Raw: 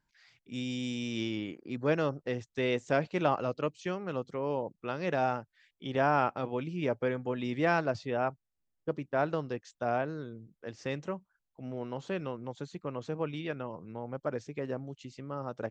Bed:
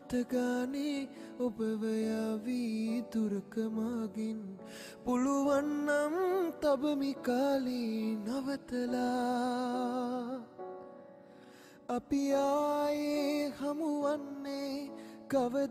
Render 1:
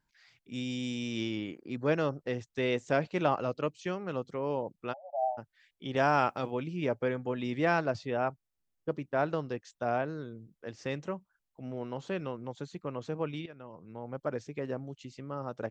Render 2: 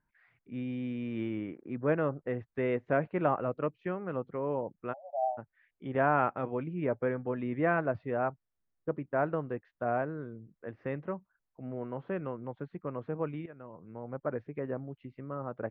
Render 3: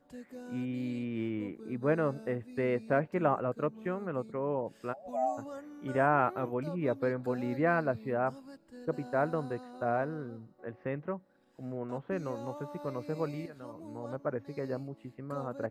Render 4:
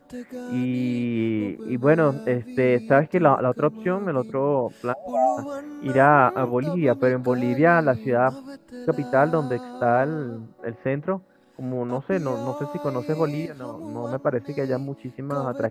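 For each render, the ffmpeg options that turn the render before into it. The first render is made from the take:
ffmpeg -i in.wav -filter_complex "[0:a]asplit=3[link_01][link_02][link_03];[link_01]afade=type=out:start_time=4.92:duration=0.02[link_04];[link_02]asuperpass=centerf=700:order=12:qfactor=2.7,afade=type=in:start_time=4.92:duration=0.02,afade=type=out:start_time=5.37:duration=0.02[link_05];[link_03]afade=type=in:start_time=5.37:duration=0.02[link_06];[link_04][link_05][link_06]amix=inputs=3:normalize=0,asettb=1/sr,asplit=3[link_07][link_08][link_09];[link_07]atrim=end=5.964[link_10];[link_08]atrim=start=5.96:end=6.51,asetpts=PTS-STARTPTS,afade=type=in:duration=0.004:curve=qsin,afade=type=out:start_time=0.546:duration=0.004:curve=qsin,highshelf=frequency=3900:gain=11.5[link_11];[link_09]atrim=start=6.506[link_12];[link_10][link_11]acrossfade=duration=0.004:curve1=hsin:curve2=qsin[link_13];[link_13][link_12]acrossfade=duration=0.004:curve1=qsin:curve2=hsin,asplit=2[link_14][link_15];[link_14]atrim=end=13.46,asetpts=PTS-STARTPTS,afade=type=out:start_time=13.456:duration=0.004:curve=hsin:silence=0.158489[link_16];[link_15]atrim=start=13.46,asetpts=PTS-STARTPTS,afade=type=in:duration=0.74:silence=0.158489[link_17];[link_16][link_17]concat=n=2:v=0:a=1" out.wav
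ffmpeg -i in.wav -af "lowpass=frequency=2000:width=0.5412,lowpass=frequency=2000:width=1.3066,bandreject=frequency=850:width=17" out.wav
ffmpeg -i in.wav -i bed.wav -filter_complex "[1:a]volume=-14dB[link_01];[0:a][link_01]amix=inputs=2:normalize=0" out.wav
ffmpeg -i in.wav -af "volume=11dB" out.wav

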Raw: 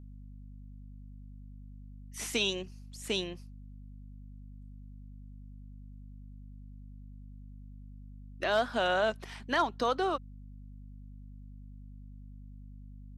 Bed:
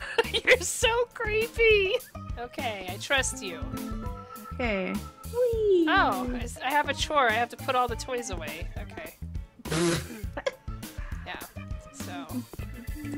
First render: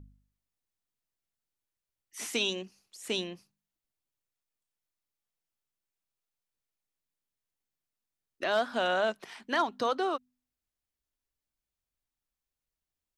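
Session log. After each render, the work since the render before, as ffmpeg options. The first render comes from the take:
ffmpeg -i in.wav -af "bandreject=frequency=50:width_type=h:width=4,bandreject=frequency=100:width_type=h:width=4,bandreject=frequency=150:width_type=h:width=4,bandreject=frequency=200:width_type=h:width=4,bandreject=frequency=250:width_type=h:width=4" out.wav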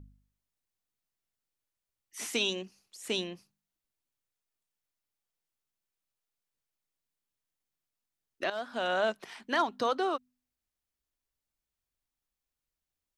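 ffmpeg -i in.wav -filter_complex "[0:a]asplit=2[link_01][link_02];[link_01]atrim=end=8.5,asetpts=PTS-STARTPTS,afade=type=out:start_time=8.496:duration=0.004:curve=hsin:silence=0.237137[link_03];[link_02]atrim=start=8.5,asetpts=PTS-STARTPTS,afade=type=in:duration=0.54:silence=0.237137[link_04];[link_03][link_04]concat=n=2:v=0:a=1" out.wav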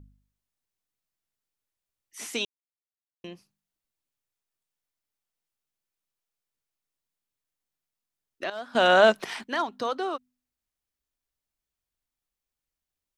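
ffmpeg -i in.wav -filter_complex "[0:a]asplit=5[link_01][link_02][link_03][link_04][link_05];[link_01]atrim=end=2.45,asetpts=PTS-STARTPTS,afade=type=out:start_time=2.446:duration=0.004:curve=hsin[link_06];[link_02]atrim=start=2.45:end=3.24,asetpts=PTS-STARTPTS,volume=0[link_07];[link_03]atrim=start=3.24:end=8.752,asetpts=PTS-STARTPTS,afade=type=in:duration=0.004:curve=hsin[link_08];[link_04]atrim=start=8.748:end=9.442,asetpts=PTS-STARTPTS,volume=11.5dB[link_09];[link_05]atrim=start=9.438[link_10];[link_06][link_07][link_08]concat=n=3:v=0:a=1[link_11];[link_11][link_09]acrossfade=duration=0.004:curve1=hsin:curve2=hsin[link_12];[link_12][link_10]acrossfade=duration=0.004:curve1=hsin:curve2=hsin" out.wav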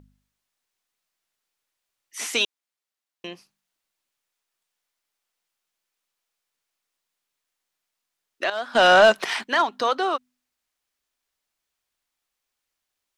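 ffmpeg -i in.wav -filter_complex "[0:a]asplit=2[link_01][link_02];[link_02]highpass=frequency=720:poles=1,volume=15dB,asoftclip=type=tanh:threshold=-5.5dB[link_03];[link_01][link_03]amix=inputs=2:normalize=0,lowpass=frequency=6900:poles=1,volume=-6dB" out.wav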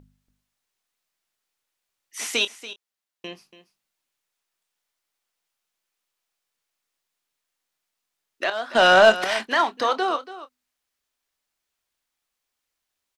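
ffmpeg -i in.wav -filter_complex "[0:a]asplit=2[link_01][link_02];[link_02]adelay=27,volume=-13dB[link_03];[link_01][link_03]amix=inputs=2:normalize=0,aecho=1:1:284:0.178" out.wav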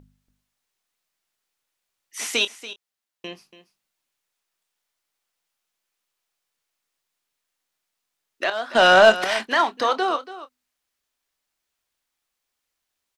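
ffmpeg -i in.wav -af "volume=1dB" out.wav

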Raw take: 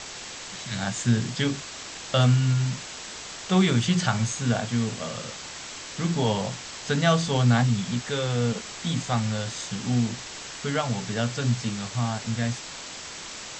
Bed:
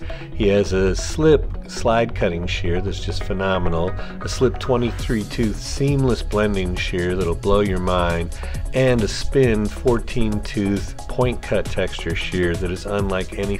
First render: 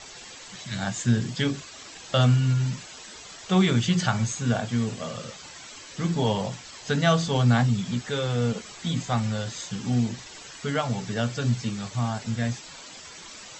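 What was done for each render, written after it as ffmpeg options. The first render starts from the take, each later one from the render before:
ffmpeg -i in.wav -af "afftdn=noise_reduction=10:noise_floor=-39" out.wav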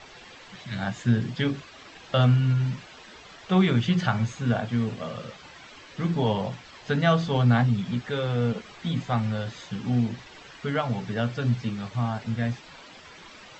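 ffmpeg -i in.wav -af "lowpass=3200" out.wav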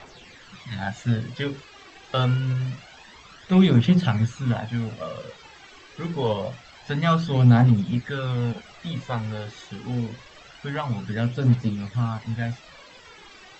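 ffmpeg -i in.wav -af "aphaser=in_gain=1:out_gain=1:delay=2.7:decay=0.5:speed=0.26:type=triangular,aeval=exprs='0.501*(cos(1*acos(clip(val(0)/0.501,-1,1)))-cos(1*PI/2))+0.0126*(cos(7*acos(clip(val(0)/0.501,-1,1)))-cos(7*PI/2))':channel_layout=same" out.wav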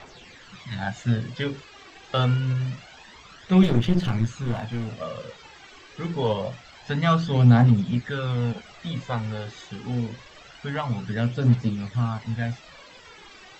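ffmpeg -i in.wav -filter_complex "[0:a]asettb=1/sr,asplit=3[link_01][link_02][link_03];[link_01]atrim=end=3.634[link_04];[link_02]atrim=start=3.63:end=4.93,asetpts=PTS-STARTPTS,afade=type=in:duration=0.004:curve=qsin,afade=type=out:start_time=1.296:duration=0.004:curve=qsin,aeval=exprs='clip(val(0),-1,0.0447)':channel_layout=same[link_05];[link_03]atrim=start=4.926[link_06];[link_04][link_05]acrossfade=duration=0.004:curve1=hsin:curve2=qsin[link_07];[link_07][link_06]acrossfade=duration=0.004:curve1=qsin:curve2=hsin" out.wav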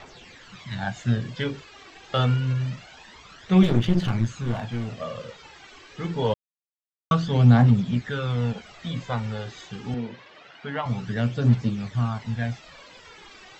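ffmpeg -i in.wav -filter_complex "[0:a]asettb=1/sr,asplit=3[link_01][link_02][link_03];[link_01]atrim=end=9.944[link_04];[link_02]atrim=start=9.94:end=10.86,asetpts=PTS-STARTPTS,afade=type=in:duration=0.004:curve=qsin,afade=type=out:start_time=0.916:duration=0.004:curve=qsin,highpass=190,lowpass=3500[link_05];[link_03]atrim=start=10.856[link_06];[link_04][link_05]acrossfade=duration=0.004:curve1=hsin:curve2=qsin[link_07];[link_07][link_06]acrossfade=duration=0.004:curve1=qsin:curve2=hsin,asplit=3[link_08][link_09][link_10];[link_08]atrim=end=6.34,asetpts=PTS-STARTPTS,afade=type=out:start_time=6.336:duration=0.004:curve=hsin[link_11];[link_09]atrim=start=6.34:end=7.11,asetpts=PTS-STARTPTS,volume=0[link_12];[link_10]atrim=start=7.11,asetpts=PTS-STARTPTS,afade=type=in:duration=0.004:curve=hsin[link_13];[link_11][link_12][link_13]concat=n=3:v=0:a=1" out.wav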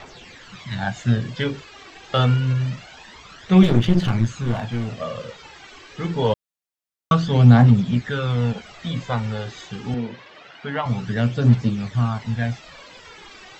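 ffmpeg -i in.wav -af "volume=4dB" out.wav

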